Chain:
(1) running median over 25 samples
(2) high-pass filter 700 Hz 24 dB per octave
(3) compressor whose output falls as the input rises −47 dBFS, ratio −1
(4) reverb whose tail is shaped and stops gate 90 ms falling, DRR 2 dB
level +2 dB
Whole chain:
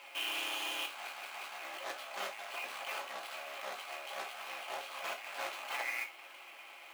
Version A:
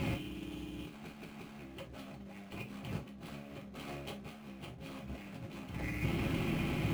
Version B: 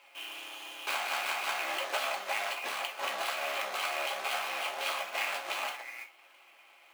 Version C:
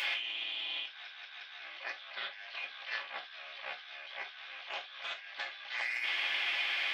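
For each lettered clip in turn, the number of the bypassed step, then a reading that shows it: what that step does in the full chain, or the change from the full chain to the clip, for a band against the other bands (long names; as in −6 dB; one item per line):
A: 2, 250 Hz band +28.5 dB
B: 3, 250 Hz band −3.0 dB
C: 1, 500 Hz band −11.5 dB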